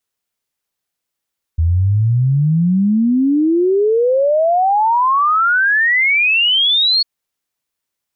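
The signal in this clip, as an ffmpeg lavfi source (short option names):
-f lavfi -i "aevalsrc='0.299*clip(min(t,5.45-t)/0.01,0,1)*sin(2*PI*79*5.45/log(4400/79)*(exp(log(4400/79)*t/5.45)-1))':d=5.45:s=44100"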